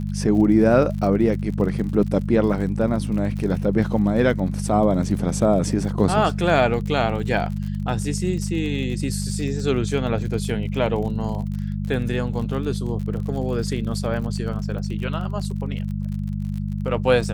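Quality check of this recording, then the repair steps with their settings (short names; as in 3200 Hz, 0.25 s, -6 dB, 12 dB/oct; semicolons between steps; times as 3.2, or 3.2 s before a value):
crackle 48/s -31 dBFS
hum 50 Hz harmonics 4 -26 dBFS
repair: de-click; de-hum 50 Hz, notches 4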